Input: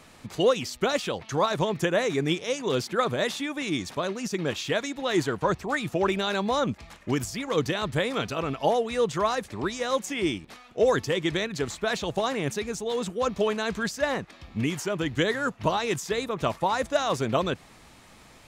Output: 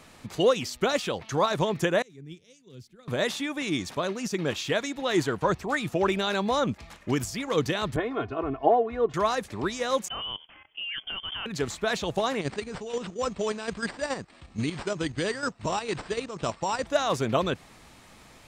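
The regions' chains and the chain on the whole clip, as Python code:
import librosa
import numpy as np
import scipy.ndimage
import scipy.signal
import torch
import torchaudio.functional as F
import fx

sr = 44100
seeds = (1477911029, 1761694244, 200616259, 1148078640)

y = fx.chain(x, sr, fx.tone_stack(knobs='10-0-1'),
    fx.band_widen(depth_pct=100), at=(2.02, 3.08))
y = fx.chain(y, sr, fx.lowpass(hz=1300.0, slope=12),
    fx.comb(ms=2.8, depth=0.81),
    fx.band_widen(depth_pct=40), at=(7.96, 9.14))
y = fx.chain(y, sr, fx.level_steps(step_db=17),
    fx.freq_invert(carrier_hz=3300), at=(10.08, 11.46))
y = fx.chain(y, sr, fx.level_steps(step_db=9),
    fx.sample_hold(seeds[0], rate_hz=6500.0, jitter_pct=0),
    fx.brickwall_lowpass(high_hz=9000.0), at=(12.41, 16.87))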